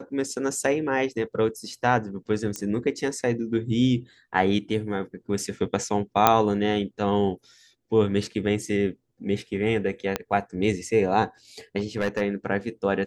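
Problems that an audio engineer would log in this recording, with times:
2.56 pop -15 dBFS
6.27 pop -2 dBFS
10.16 pop -9 dBFS
11.77–12.21 clipped -19.5 dBFS

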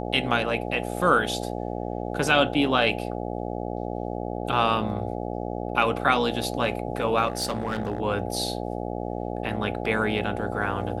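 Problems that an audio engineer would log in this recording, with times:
buzz 60 Hz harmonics 14 -31 dBFS
7.27–8 clipped -22 dBFS

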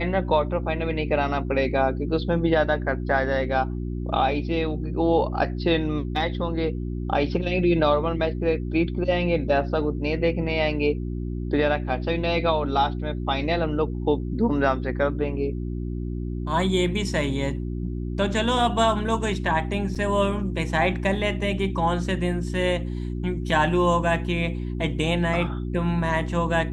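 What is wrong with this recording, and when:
hum 60 Hz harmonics 6 -29 dBFS
19.95–19.96 gap 6.2 ms

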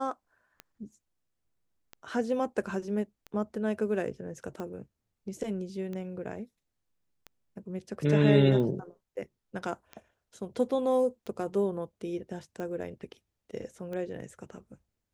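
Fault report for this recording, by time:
tick 45 rpm -26 dBFS

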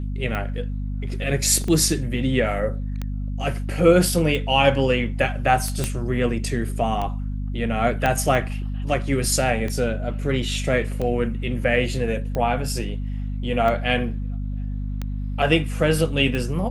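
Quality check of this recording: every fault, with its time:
hum 50 Hz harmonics 5 -27 dBFS
tick 45 rpm -15 dBFS
1.64 gap 2.3 ms
5.84 pop -8 dBFS
8.06 pop -8 dBFS

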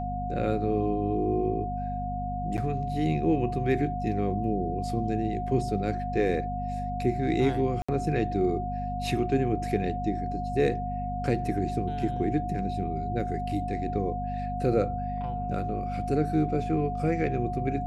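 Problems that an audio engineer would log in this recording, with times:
hum 50 Hz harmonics 5 -34 dBFS
tone 720 Hz -32 dBFS
2.57–2.58 gap 8.4 ms
7.82–7.88 gap 65 ms

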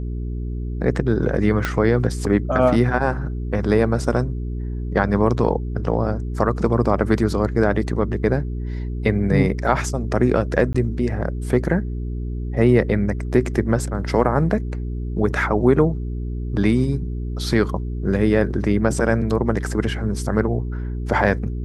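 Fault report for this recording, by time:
hum 60 Hz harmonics 7 -26 dBFS
1.65 pop -7 dBFS
10.73–10.74 gap 15 ms

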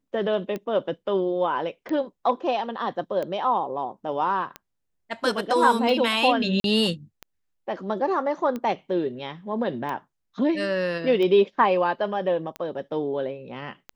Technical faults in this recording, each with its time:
tick 45 rpm -19 dBFS
6.6–6.64 gap 42 ms

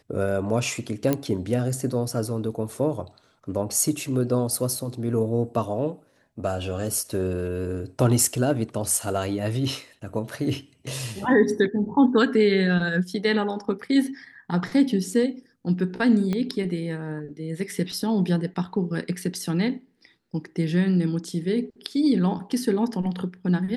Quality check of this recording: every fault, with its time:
1.13 pop -9 dBFS
16.33 pop -15 dBFS

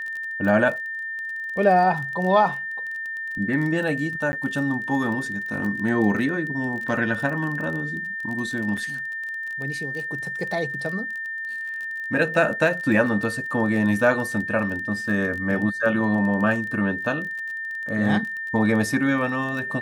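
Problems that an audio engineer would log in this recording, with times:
crackle 27/s -30 dBFS
tone 1800 Hz -28 dBFS
4.32–4.33 gap 10 ms
8.77 gap 4.5 ms

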